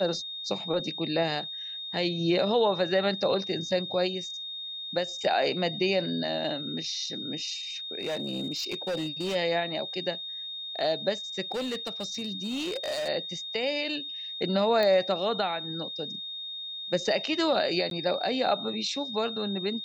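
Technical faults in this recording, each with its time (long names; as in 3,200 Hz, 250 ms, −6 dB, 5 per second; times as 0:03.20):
whistle 3,700 Hz −35 dBFS
0:08.00–0:09.36: clipping −27 dBFS
0:11.52–0:13.09: clipping −28 dBFS
0:14.83: click −16 dBFS
0:17.90–0:17.91: drop-out 12 ms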